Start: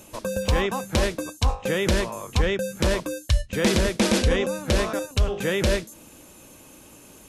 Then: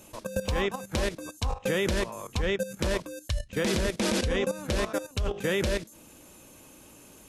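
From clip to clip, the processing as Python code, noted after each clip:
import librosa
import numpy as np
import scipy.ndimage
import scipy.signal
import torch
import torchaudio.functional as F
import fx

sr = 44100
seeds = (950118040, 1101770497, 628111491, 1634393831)

y = fx.level_steps(x, sr, step_db=13)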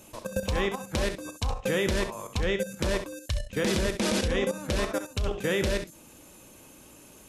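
y = fx.room_early_taps(x, sr, ms=(34, 66), db=(-16.5, -10.5))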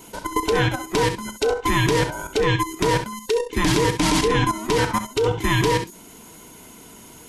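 y = fx.band_invert(x, sr, width_hz=500)
y = y * 10.0 ** (7.5 / 20.0)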